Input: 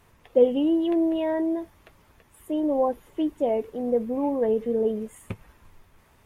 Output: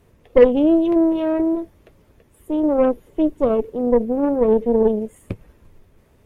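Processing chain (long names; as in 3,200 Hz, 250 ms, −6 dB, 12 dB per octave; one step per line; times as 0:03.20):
harmonic generator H 6 −13 dB, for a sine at −7.5 dBFS
low shelf with overshoot 680 Hz +7.5 dB, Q 1.5
level −2.5 dB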